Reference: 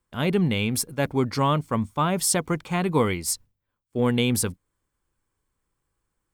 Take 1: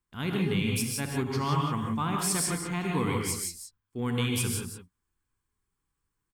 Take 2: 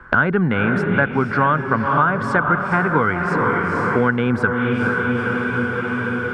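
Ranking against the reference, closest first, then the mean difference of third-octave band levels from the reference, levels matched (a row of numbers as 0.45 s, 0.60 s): 1, 2; 8.5 dB, 11.5 dB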